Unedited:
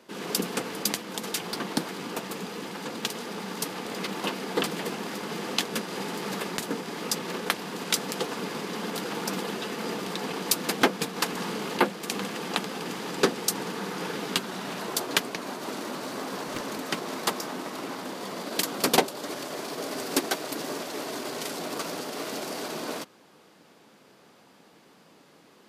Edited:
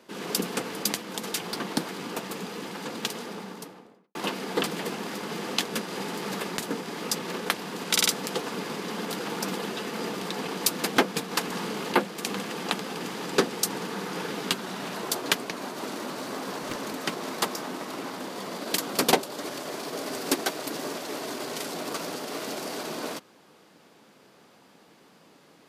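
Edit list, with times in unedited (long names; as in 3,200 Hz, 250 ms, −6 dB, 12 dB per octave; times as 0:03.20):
0:03.07–0:04.15: fade out and dull
0:07.91: stutter 0.05 s, 4 plays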